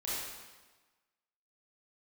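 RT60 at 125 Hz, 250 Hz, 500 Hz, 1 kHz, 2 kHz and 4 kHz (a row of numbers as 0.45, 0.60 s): 1.2, 1.3, 1.2, 1.3, 1.2, 1.1 s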